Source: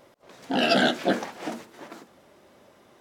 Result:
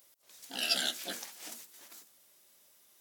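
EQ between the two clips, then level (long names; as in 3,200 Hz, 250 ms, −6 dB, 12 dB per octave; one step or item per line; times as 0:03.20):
first-order pre-emphasis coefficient 0.9
high-shelf EQ 2,500 Hz +8 dB
high-shelf EQ 12,000 Hz +7 dB
−4.0 dB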